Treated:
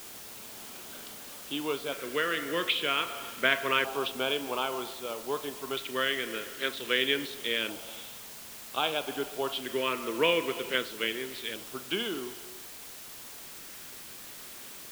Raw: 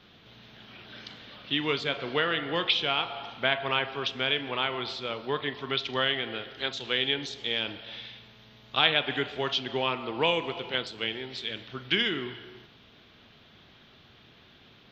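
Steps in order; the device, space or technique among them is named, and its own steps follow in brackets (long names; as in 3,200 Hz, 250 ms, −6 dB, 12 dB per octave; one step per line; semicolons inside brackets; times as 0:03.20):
shortwave radio (band-pass filter 260–2,500 Hz; amplitude tremolo 0.28 Hz, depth 48%; auto-filter notch square 0.26 Hz 790–1,900 Hz; white noise bed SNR 12 dB)
level +4.5 dB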